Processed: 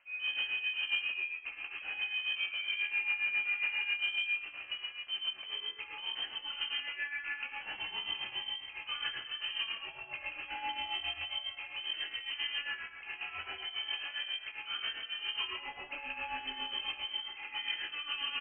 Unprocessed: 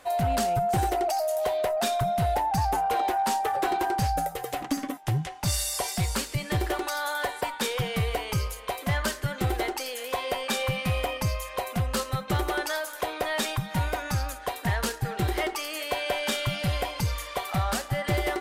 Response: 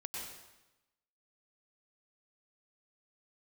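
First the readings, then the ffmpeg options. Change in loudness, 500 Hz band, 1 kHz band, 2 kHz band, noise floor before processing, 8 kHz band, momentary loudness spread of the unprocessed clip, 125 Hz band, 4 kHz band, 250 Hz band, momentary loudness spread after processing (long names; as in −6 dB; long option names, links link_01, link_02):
−7.5 dB, −29.5 dB, −19.5 dB, −1.5 dB, −41 dBFS, below −40 dB, 5 LU, below −35 dB, +0.5 dB, −28.5 dB, 8 LU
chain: -filter_complex "[0:a]aecho=1:1:17|28:0.473|0.355[link_01];[1:a]atrim=start_sample=2205,asetrate=66150,aresample=44100[link_02];[link_01][link_02]afir=irnorm=-1:irlink=0,tremolo=f=7.4:d=0.67,lowpass=frequency=2700:width_type=q:width=0.5098,lowpass=frequency=2700:width_type=q:width=0.6013,lowpass=frequency=2700:width_type=q:width=0.9,lowpass=frequency=2700:width_type=q:width=2.563,afreqshift=-3200,volume=-5.5dB"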